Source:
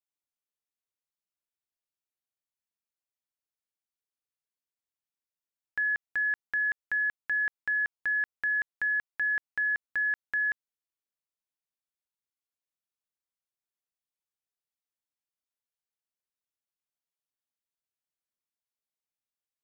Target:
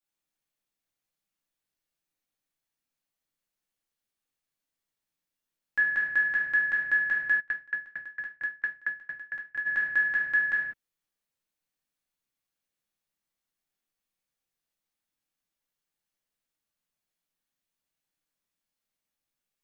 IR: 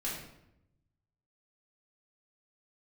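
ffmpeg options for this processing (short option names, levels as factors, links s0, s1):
-filter_complex "[1:a]atrim=start_sample=2205,afade=t=out:st=0.26:d=0.01,atrim=end_sample=11907[s0];[0:a][s0]afir=irnorm=-1:irlink=0,asplit=3[s1][s2][s3];[s1]afade=t=out:st=7.39:d=0.02[s4];[s2]aeval=exprs='val(0)*pow(10,-34*if(lt(mod(4.4*n/s,1),2*abs(4.4)/1000),1-mod(4.4*n/s,1)/(2*abs(4.4)/1000),(mod(4.4*n/s,1)-2*abs(4.4)/1000)/(1-2*abs(4.4)/1000))/20)':c=same,afade=t=in:st=7.39:d=0.02,afade=t=out:st=9.65:d=0.02[s5];[s3]afade=t=in:st=9.65:d=0.02[s6];[s4][s5][s6]amix=inputs=3:normalize=0,volume=1.58"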